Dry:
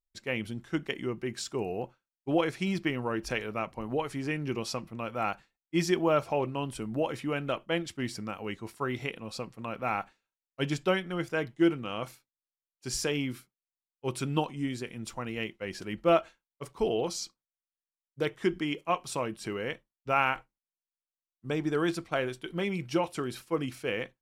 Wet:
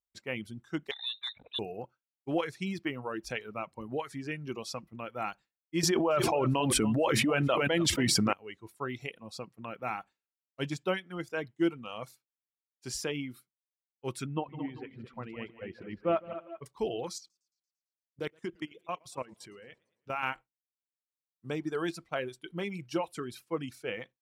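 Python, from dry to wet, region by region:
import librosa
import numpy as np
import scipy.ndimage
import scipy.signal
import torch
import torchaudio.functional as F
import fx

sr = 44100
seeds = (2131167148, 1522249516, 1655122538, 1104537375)

y = fx.chain(x, sr, fx.freq_invert(carrier_hz=3900),
    fx.transformer_sat(knee_hz=1500.0), at=(0.91, 1.59))
y = fx.chain(y, sr, fx.echo_single(ms=277, db=-14.5),
    fx.env_flatten(amount_pct=100), at=(5.83, 8.33))
y = fx.chain(y, sr, fx.air_absorb(metres=420.0),
    fx.echo_multitap(ms=(157, 221, 304, 388, 397), db=(-10.0, -8.5, -18.5, -17.0, -18.0)), at=(14.26, 16.66))
y = fx.chain(y, sr, fx.level_steps(step_db=15),
    fx.echo_warbled(ms=113, feedback_pct=58, rate_hz=2.8, cents=170, wet_db=-18.0), at=(17.18, 20.23))
y = scipy.signal.sosfilt(scipy.signal.butter(2, 57.0, 'highpass', fs=sr, output='sos'), y)
y = fx.dereverb_blind(y, sr, rt60_s=1.1)
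y = y * 10.0 ** (-3.5 / 20.0)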